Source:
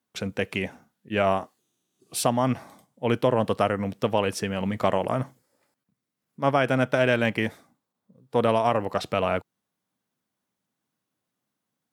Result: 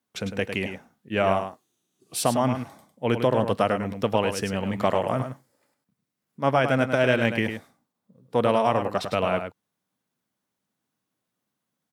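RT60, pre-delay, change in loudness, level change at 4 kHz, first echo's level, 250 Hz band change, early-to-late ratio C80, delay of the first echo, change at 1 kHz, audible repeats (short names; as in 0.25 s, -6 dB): none, none, +0.5 dB, +0.5 dB, -8.0 dB, +0.5 dB, none, 0.103 s, +0.5 dB, 1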